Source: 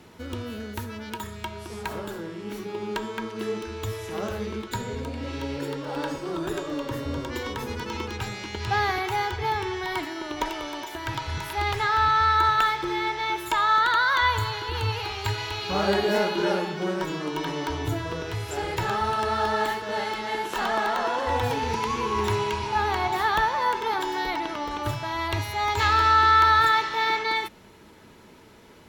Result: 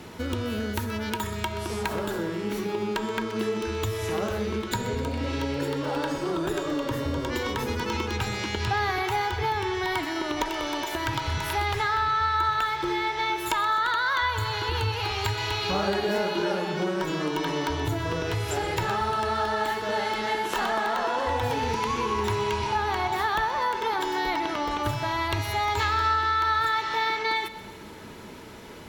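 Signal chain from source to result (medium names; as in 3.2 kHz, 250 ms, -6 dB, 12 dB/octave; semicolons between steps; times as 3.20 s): compression 3:1, threshold -34 dBFS, peak gain reduction 14 dB; two-band feedback delay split 710 Hz, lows 183 ms, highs 127 ms, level -15 dB; trim +7.5 dB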